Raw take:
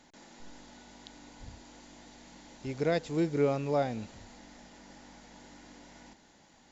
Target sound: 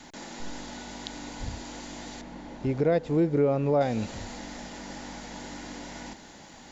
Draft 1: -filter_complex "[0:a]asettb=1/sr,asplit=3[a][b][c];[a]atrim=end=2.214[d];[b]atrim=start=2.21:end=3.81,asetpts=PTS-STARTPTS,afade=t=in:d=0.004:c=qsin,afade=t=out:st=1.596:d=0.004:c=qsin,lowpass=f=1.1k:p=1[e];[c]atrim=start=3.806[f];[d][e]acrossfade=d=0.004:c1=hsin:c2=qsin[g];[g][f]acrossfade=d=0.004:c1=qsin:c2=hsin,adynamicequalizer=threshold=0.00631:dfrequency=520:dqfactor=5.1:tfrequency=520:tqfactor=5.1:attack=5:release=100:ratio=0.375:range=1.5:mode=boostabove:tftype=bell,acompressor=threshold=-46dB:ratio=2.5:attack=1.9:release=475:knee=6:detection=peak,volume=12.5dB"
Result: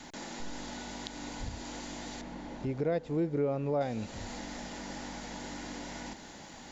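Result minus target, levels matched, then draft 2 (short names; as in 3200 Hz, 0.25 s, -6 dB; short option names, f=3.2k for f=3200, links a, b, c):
compressor: peak gain reduction +7 dB
-filter_complex "[0:a]asettb=1/sr,asplit=3[a][b][c];[a]atrim=end=2.214[d];[b]atrim=start=2.21:end=3.81,asetpts=PTS-STARTPTS,afade=t=in:d=0.004:c=qsin,afade=t=out:st=1.596:d=0.004:c=qsin,lowpass=f=1.1k:p=1[e];[c]atrim=start=3.806[f];[d][e]acrossfade=d=0.004:c1=hsin:c2=qsin[g];[g][f]acrossfade=d=0.004:c1=qsin:c2=hsin,adynamicequalizer=threshold=0.00631:dfrequency=520:dqfactor=5.1:tfrequency=520:tqfactor=5.1:attack=5:release=100:ratio=0.375:range=1.5:mode=boostabove:tftype=bell,acompressor=threshold=-34.5dB:ratio=2.5:attack=1.9:release=475:knee=6:detection=peak,volume=12.5dB"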